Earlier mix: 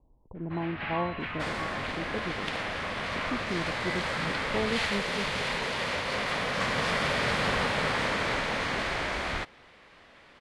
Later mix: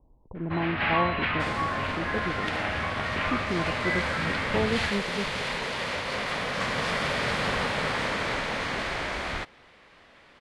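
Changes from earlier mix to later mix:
speech +3.5 dB; first sound +9.0 dB

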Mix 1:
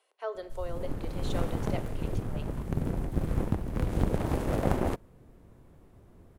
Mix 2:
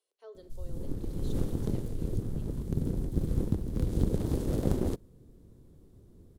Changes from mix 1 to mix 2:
speech -8.5 dB; master: add high-order bell 1.3 kHz -12 dB 2.5 oct

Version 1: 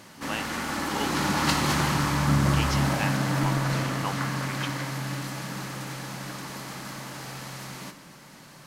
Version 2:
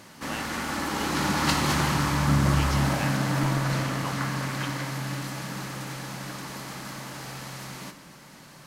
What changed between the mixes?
speech -4.5 dB; master: add peaking EQ 62 Hz +5.5 dB 0.36 oct

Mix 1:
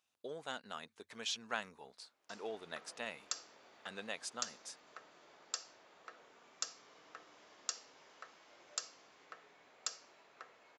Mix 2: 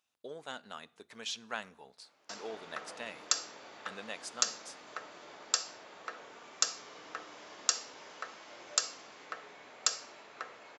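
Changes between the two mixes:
background +10.0 dB; reverb: on, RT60 0.70 s

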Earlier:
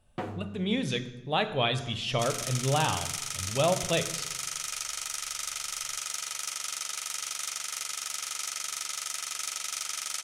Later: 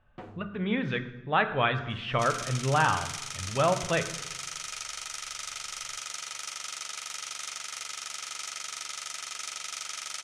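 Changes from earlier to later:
speech: add FFT filter 670 Hz 0 dB, 1.5 kHz +11 dB, 9.5 kHz -26 dB; first sound -9.0 dB; master: add distance through air 51 m

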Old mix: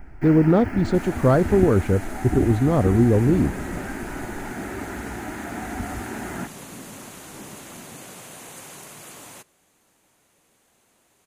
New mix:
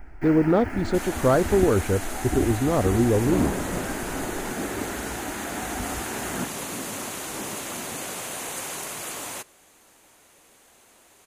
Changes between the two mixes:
second sound +8.5 dB; master: add peaking EQ 150 Hz -7.5 dB 1.5 oct

